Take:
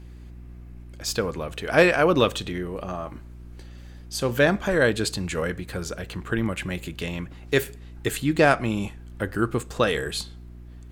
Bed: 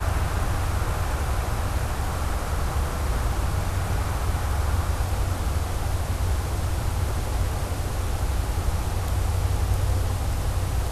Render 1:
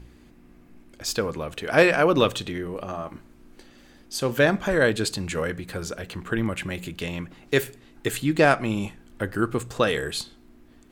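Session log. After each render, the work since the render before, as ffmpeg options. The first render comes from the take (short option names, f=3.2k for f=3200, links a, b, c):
-af "bandreject=f=60:t=h:w=4,bandreject=f=120:t=h:w=4,bandreject=f=180:t=h:w=4"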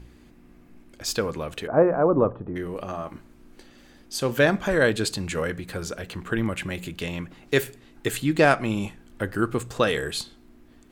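-filter_complex "[0:a]asettb=1/sr,asplit=3[a][b][c];[a]atrim=end=1.674[d];[b]atrim=start=1.67:end=2.56,asetpts=PTS-STARTPTS,afade=t=in:d=0.004:c=qsin,afade=t=out:st=0.886:d=0.004:c=qsin,lowpass=f=1.1k:w=0.5412,lowpass=f=1.1k:w=1.3066[e];[c]atrim=start=2.556[f];[d][e]acrossfade=d=0.004:c1=hsin:c2=qsin[g];[g][f]acrossfade=d=0.004:c1=qsin:c2=hsin"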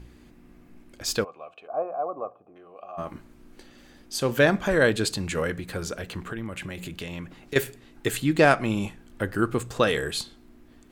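-filter_complex "[0:a]asplit=3[a][b][c];[a]afade=t=out:st=1.23:d=0.02[d];[b]asplit=3[e][f][g];[e]bandpass=f=730:t=q:w=8,volume=0dB[h];[f]bandpass=f=1.09k:t=q:w=8,volume=-6dB[i];[g]bandpass=f=2.44k:t=q:w=8,volume=-9dB[j];[h][i][j]amix=inputs=3:normalize=0,afade=t=in:st=1.23:d=0.02,afade=t=out:st=2.97:d=0.02[k];[c]afade=t=in:st=2.97:d=0.02[l];[d][k][l]amix=inputs=3:normalize=0,asettb=1/sr,asplit=3[m][n][o];[m]atrim=end=6.264[p];[n]atrim=start=6.26:end=7.56,asetpts=PTS-STARTPTS,afade=t=in:d=0.004:c=qsin,afade=t=out:st=1.296:d=0.004:c=qsin,acompressor=threshold=-32dB:ratio=3:attack=3.2:release=140:knee=1:detection=peak[q];[o]atrim=start=7.556[r];[p][q]acrossfade=d=0.004:c1=hsin:c2=qsin[s];[s][r]acrossfade=d=0.004:c1=qsin:c2=hsin"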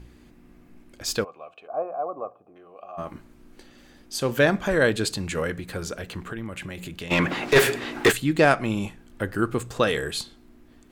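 -filter_complex "[0:a]asplit=3[a][b][c];[a]afade=t=out:st=7.1:d=0.02[d];[b]asplit=2[e][f];[f]highpass=f=720:p=1,volume=33dB,asoftclip=type=tanh:threshold=-6dB[g];[e][g]amix=inputs=2:normalize=0,lowpass=f=2.3k:p=1,volume=-6dB,afade=t=in:st=7.1:d=0.02,afade=t=out:st=8.11:d=0.02[h];[c]afade=t=in:st=8.11:d=0.02[i];[d][h][i]amix=inputs=3:normalize=0"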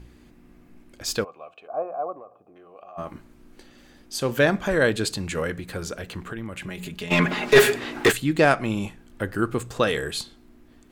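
-filter_complex "[0:a]asettb=1/sr,asplit=3[a][b][c];[a]atrim=end=2.124[d];[b]atrim=start=2.12:end=2.96,asetpts=PTS-STARTPTS,afade=t=in:d=0.004:c=qsin,afade=t=out:st=0.836:d=0.004:c=qsin,acompressor=threshold=-39dB:ratio=6:attack=3.2:release=140:knee=1:detection=peak[e];[c]atrim=start=2.956[f];[d][e]acrossfade=d=0.004:c1=hsin:c2=qsin[g];[g][f]acrossfade=d=0.004:c1=qsin:c2=hsin,asettb=1/sr,asplit=3[h][i][j];[h]atrim=end=6.664[k];[i]atrim=start=6.66:end=7.73,asetpts=PTS-STARTPTS,afade=t=in:d=0.004:c=qsin,afade=t=out:st=1.066:d=0.004:c=qsin,aecho=1:1:4.8:0.65,atrim=end_sample=47187[l];[j]atrim=start=7.726[m];[k][l]acrossfade=d=0.004:c1=hsin:c2=qsin[n];[n][m]acrossfade=d=0.004:c1=qsin:c2=hsin"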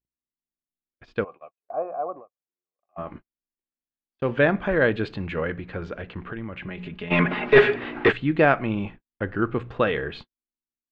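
-af "lowpass=f=2.9k:w=0.5412,lowpass=f=2.9k:w=1.3066,agate=range=-52dB:threshold=-39dB:ratio=16:detection=peak"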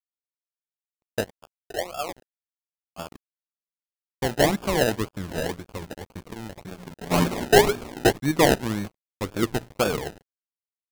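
-af "acrusher=samples=31:mix=1:aa=0.000001:lfo=1:lforange=18.6:lforate=1.9,aeval=exprs='sgn(val(0))*max(abs(val(0))-0.0106,0)':c=same"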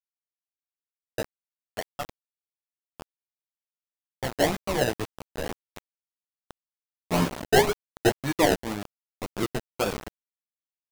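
-af "flanger=delay=8.4:depth=7.9:regen=-13:speed=0.49:shape=sinusoidal,aeval=exprs='val(0)*gte(abs(val(0)),0.0398)':c=same"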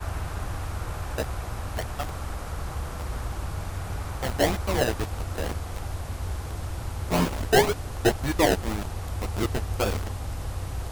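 -filter_complex "[1:a]volume=-7dB[a];[0:a][a]amix=inputs=2:normalize=0"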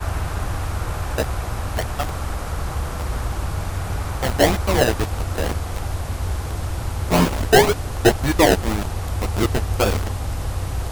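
-af "volume=7dB,alimiter=limit=-2dB:level=0:latency=1"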